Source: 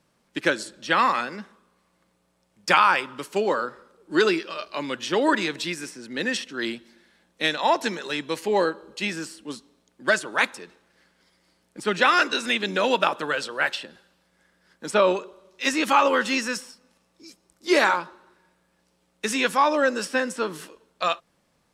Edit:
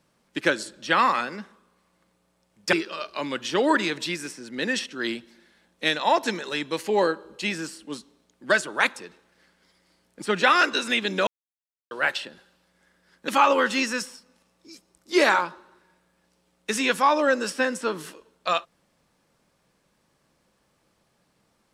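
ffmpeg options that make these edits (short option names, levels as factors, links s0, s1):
-filter_complex "[0:a]asplit=5[s0][s1][s2][s3][s4];[s0]atrim=end=2.732[s5];[s1]atrim=start=4.308:end=12.85,asetpts=PTS-STARTPTS,afade=t=out:st=8.538:d=0.004:c=hsin[s6];[s2]atrim=start=12.85:end=13.49,asetpts=PTS-STARTPTS,volume=0[s7];[s3]atrim=start=13.49:end=14.862,asetpts=PTS-STARTPTS,afade=t=in:d=0.004:c=hsin[s8];[s4]atrim=start=15.828[s9];[s6][s7][s8]concat=n=3:v=0:a=1[s10];[s5][s10]acrossfade=d=0.004:c1=hsin:c2=hsin[s11];[s11][s9]acrossfade=d=0.004:c1=hsin:c2=hsin"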